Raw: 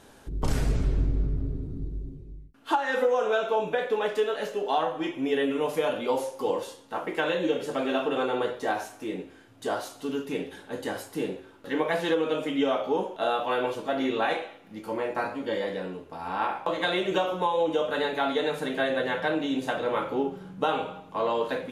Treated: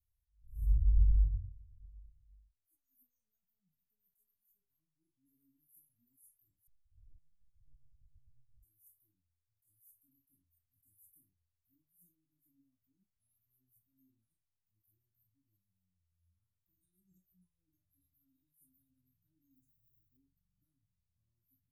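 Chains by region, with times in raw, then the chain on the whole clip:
0:06.67–0:08.63: linear-prediction vocoder at 8 kHz pitch kept + compressor whose output falls as the input rises −32 dBFS, ratio −0.5
0:19.54–0:20.17: low-pass filter 7,300 Hz + floating-point word with a short mantissa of 6 bits
whole clip: inverse Chebyshev band-stop filter 440–3,400 Hz, stop band 80 dB; noise reduction from a noise print of the clip's start 19 dB; level that may rise only so fast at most 140 dB per second

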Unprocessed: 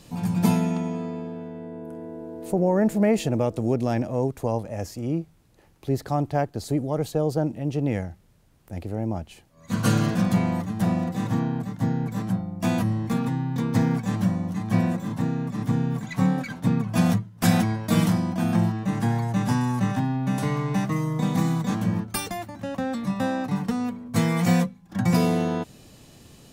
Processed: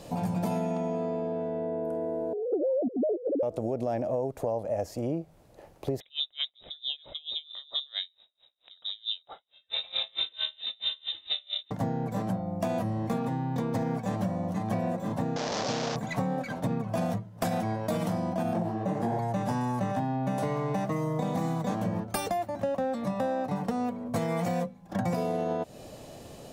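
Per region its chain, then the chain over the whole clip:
0:02.33–0:03.43: three sine waves on the formant tracks + Butterworth low-pass 540 Hz
0:06.00–0:11.71: voice inversion scrambler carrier 3,800 Hz + tremolo with a sine in dB 4.5 Hz, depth 33 dB
0:15.36–0:15.96: linear delta modulator 32 kbit/s, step −23 dBFS + bass and treble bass −10 dB, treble +14 dB
0:18.53–0:19.19: parametric band 400 Hz +7 dB 2.3 octaves + micro pitch shift up and down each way 56 cents
whole clip: parametric band 610 Hz +14 dB 1.1 octaves; brickwall limiter −11 dBFS; downward compressor 4 to 1, threshold −28 dBFS

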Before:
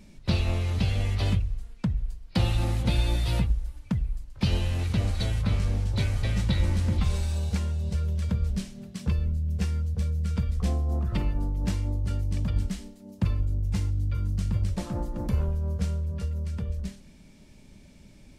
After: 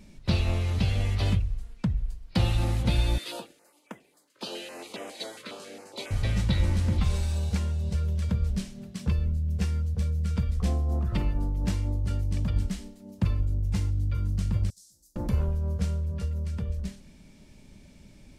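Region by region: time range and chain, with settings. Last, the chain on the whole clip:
0:03.18–0:06.11: high-pass filter 330 Hz 24 dB per octave + notch filter 5,600 Hz, Q 15 + notch on a step sequencer 7.3 Hz 790–4,300 Hz
0:14.70–0:15.16: inverse Chebyshev high-pass filter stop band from 2,700 Hz + downward compressor 2 to 1, threshold −53 dBFS + double-tracking delay 45 ms −11 dB
whole clip: no processing

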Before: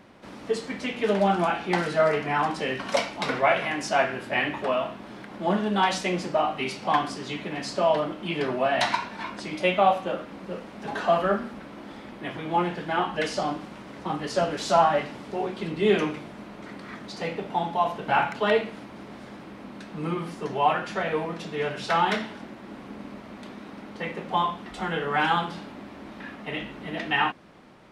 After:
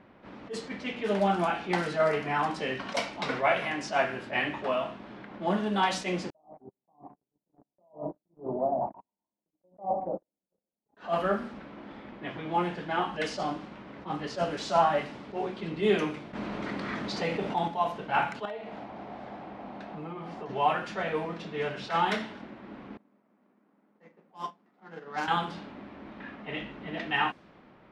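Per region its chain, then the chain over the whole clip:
0:06.30–0:10.97: Butterworth low-pass 920 Hz 48 dB per octave + single-tap delay 146 ms −12 dB + noise gate −31 dBFS, range −50 dB
0:16.33–0:17.68: hard clipping −15.5 dBFS + envelope flattener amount 50%
0:18.45–0:20.49: parametric band 740 Hz +12.5 dB 0.65 octaves + downward compressor, threshold −32 dBFS
0:22.97–0:25.28: running median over 15 samples + high-pass filter 160 Hz 24 dB per octave + expander for the loud parts 2.5 to 1, over −36 dBFS
whole clip: low-pass that shuts in the quiet parts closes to 2,500 Hz, open at −20 dBFS; level that may rise only so fast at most 230 dB per second; level −3.5 dB

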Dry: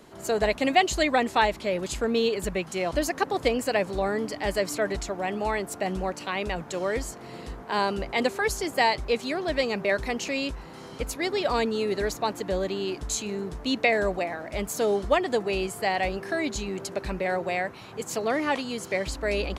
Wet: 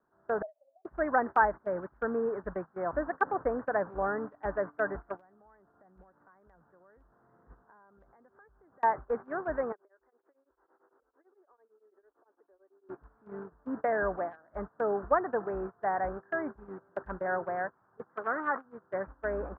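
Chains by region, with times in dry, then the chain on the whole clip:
0:00.42–0:00.85: downward compressor, threshold −26 dBFS + flat-topped band-pass 610 Hz, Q 5.4
0:05.19–0:08.83: downward compressor 8 to 1, threshold −33 dBFS + low-shelf EQ 210 Hz +6 dB
0:09.72–0:12.89: downward compressor 10 to 1, threshold −38 dBFS + low shelf with overshoot 250 Hz −13.5 dB, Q 3 + tremolo along a rectified sine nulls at 8.9 Hz
0:18.09–0:18.66: loudspeaker in its box 100–2,400 Hz, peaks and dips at 130 Hz −9 dB, 1,300 Hz +6 dB, 2,000 Hz +7 dB + saturating transformer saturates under 2,300 Hz
whole clip: Butterworth low-pass 1,600 Hz 72 dB per octave; noise gate −30 dBFS, range −20 dB; tilt shelving filter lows −9 dB, about 1,100 Hz

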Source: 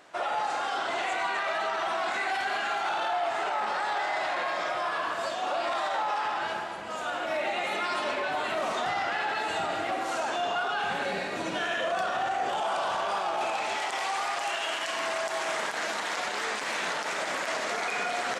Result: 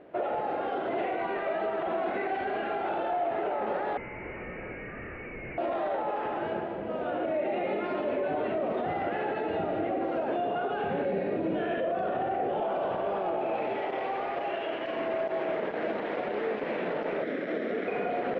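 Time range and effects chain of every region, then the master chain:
0:03.97–0:05.58: hard clipping −35.5 dBFS + voice inversion scrambler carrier 2,900 Hz
0:17.22–0:17.88: lower of the sound and its delayed copy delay 0.55 ms + high-pass filter 210 Hz 24 dB per octave
whole clip: low-pass filter 2,700 Hz 24 dB per octave; low shelf with overshoot 710 Hz +13 dB, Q 1.5; brickwall limiter −17 dBFS; level −5 dB

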